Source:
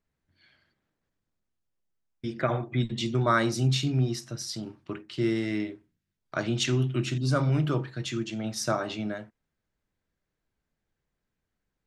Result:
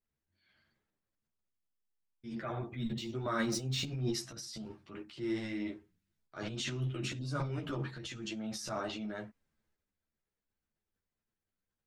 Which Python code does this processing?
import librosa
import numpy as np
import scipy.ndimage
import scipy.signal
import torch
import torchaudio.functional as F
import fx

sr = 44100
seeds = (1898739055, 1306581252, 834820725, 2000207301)

y = fx.median_filter(x, sr, points=3, at=(2.35, 4.04))
y = fx.transient(y, sr, attack_db=-6, sustain_db=10)
y = fx.ensemble(y, sr)
y = y * librosa.db_to_amplitude(-7.0)